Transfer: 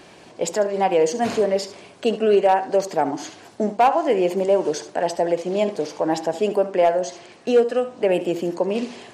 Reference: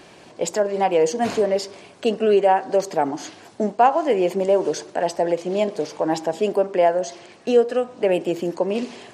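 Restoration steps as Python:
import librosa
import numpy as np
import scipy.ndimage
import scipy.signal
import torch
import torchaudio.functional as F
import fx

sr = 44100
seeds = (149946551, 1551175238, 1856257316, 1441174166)

y = fx.fix_declip(x, sr, threshold_db=-9.0)
y = fx.fix_echo_inverse(y, sr, delay_ms=72, level_db=-13.5)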